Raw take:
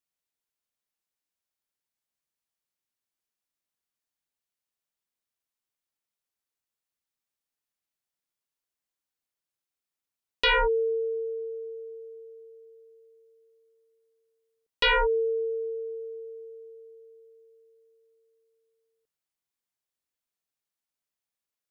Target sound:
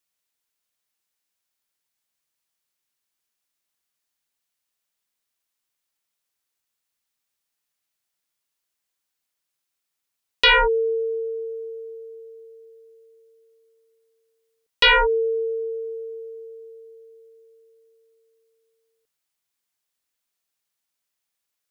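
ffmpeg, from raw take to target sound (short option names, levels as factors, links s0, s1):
-af "tiltshelf=f=970:g=-3,volume=2"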